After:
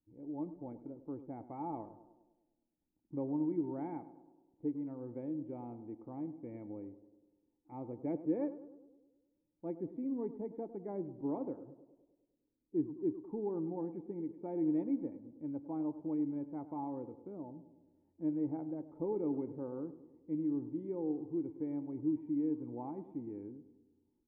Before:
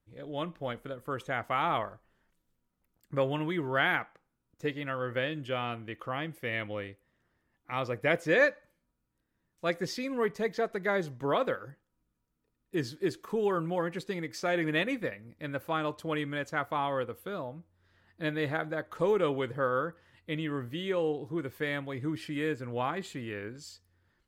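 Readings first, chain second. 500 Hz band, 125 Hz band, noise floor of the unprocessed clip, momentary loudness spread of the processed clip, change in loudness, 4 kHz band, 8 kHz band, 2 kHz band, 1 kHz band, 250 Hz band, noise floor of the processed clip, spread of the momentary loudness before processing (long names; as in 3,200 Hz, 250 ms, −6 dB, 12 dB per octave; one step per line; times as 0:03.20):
−10.5 dB, −10.0 dB, −80 dBFS, 12 LU, −7.0 dB, below −40 dB, below −25 dB, below −35 dB, −14.5 dB, 0.0 dB, −82 dBFS, 10 LU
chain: formant resonators in series u
tape delay 103 ms, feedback 67%, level −12 dB, low-pass 1,100 Hz
level +2.5 dB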